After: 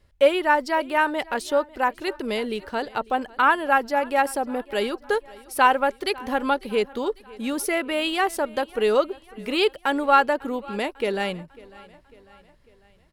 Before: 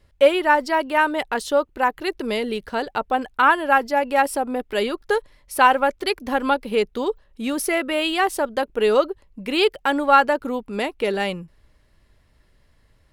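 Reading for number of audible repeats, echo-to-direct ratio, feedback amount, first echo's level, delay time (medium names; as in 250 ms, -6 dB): 3, -20.5 dB, 52%, -22.0 dB, 548 ms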